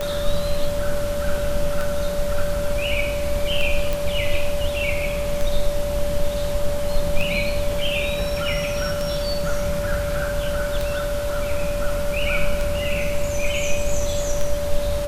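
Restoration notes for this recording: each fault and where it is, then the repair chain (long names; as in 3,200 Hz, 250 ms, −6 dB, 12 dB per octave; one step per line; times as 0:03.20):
scratch tick 33 1/3 rpm −11 dBFS
whistle 580 Hz −24 dBFS
0:03.93: click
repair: click removal
notch filter 580 Hz, Q 30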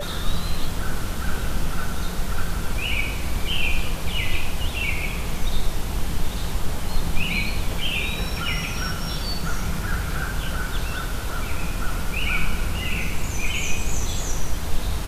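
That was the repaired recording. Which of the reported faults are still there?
none of them is left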